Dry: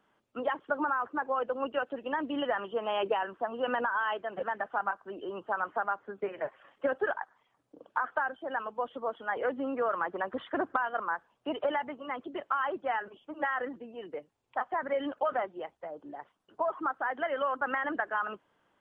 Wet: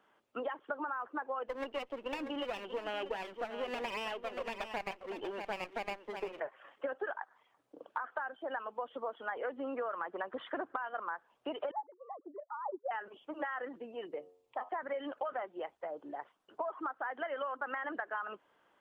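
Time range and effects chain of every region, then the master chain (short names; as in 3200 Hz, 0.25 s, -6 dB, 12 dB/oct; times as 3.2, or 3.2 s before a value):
1.48–6.4 minimum comb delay 0.34 ms + echo 0.638 s -12 dB
11.71–12.91 sine-wave speech + ladder low-pass 1000 Hz, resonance 50%
14.05–14.69 bell 1600 Hz -5.5 dB 1.8 oct + notch 1500 Hz, Q 9.1 + de-hum 90.37 Hz, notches 14
whole clip: tone controls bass -10 dB, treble -3 dB; compressor 4:1, threshold -38 dBFS; gain +2 dB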